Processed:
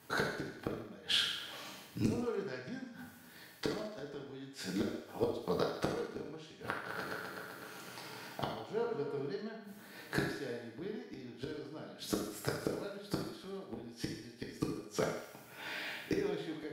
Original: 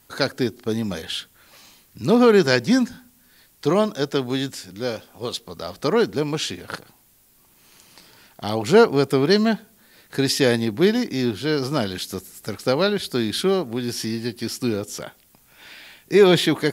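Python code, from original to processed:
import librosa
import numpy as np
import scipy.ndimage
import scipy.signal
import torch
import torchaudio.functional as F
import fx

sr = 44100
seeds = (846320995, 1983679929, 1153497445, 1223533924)

y = fx.reverse_delay_fb(x, sr, ms=127, feedback_pct=78, wet_db=-9.0, at=(6.55, 9.27))
y = scipy.signal.sosfilt(scipy.signal.butter(4, 100.0, 'highpass', fs=sr, output='sos'), y)
y = fx.high_shelf(y, sr, hz=3600.0, db=-11.0)
y = fx.hum_notches(y, sr, base_hz=50, count=4)
y = fx.gate_flip(y, sr, shuts_db=-21.0, range_db=-28)
y = fx.echo_thinned(y, sr, ms=72, feedback_pct=67, hz=420.0, wet_db=-10.0)
y = fx.rev_gated(y, sr, seeds[0], gate_ms=210, shape='falling', drr_db=-0.5)
y = y * librosa.db_to_amplitude(1.0)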